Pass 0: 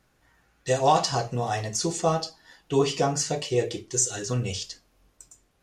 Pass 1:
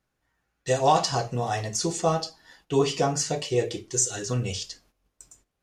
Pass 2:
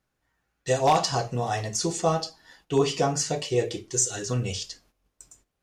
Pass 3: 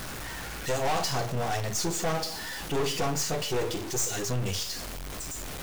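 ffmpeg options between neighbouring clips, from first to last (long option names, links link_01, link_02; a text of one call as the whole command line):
ffmpeg -i in.wav -af "agate=range=-12dB:threshold=-58dB:ratio=16:detection=peak" out.wav
ffmpeg -i in.wav -af "aeval=exprs='0.266*(abs(mod(val(0)/0.266+3,4)-2)-1)':channel_layout=same" out.wav
ffmpeg -i in.wav -af "aeval=exprs='val(0)+0.5*0.0473*sgn(val(0))':channel_layout=same,aeval=exprs='(tanh(17.8*val(0)+0.8)-tanh(0.8))/17.8':channel_layout=same" out.wav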